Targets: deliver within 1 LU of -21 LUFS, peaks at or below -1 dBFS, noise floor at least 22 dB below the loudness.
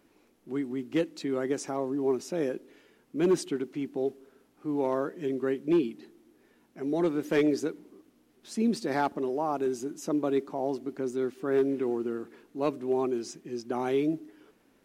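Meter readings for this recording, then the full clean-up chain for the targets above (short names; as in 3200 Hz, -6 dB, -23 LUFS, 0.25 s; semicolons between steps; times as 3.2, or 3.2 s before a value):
clipped 0.3%; flat tops at -18.0 dBFS; loudness -30.5 LUFS; peak -18.0 dBFS; loudness target -21.0 LUFS
-> clip repair -18 dBFS; gain +9.5 dB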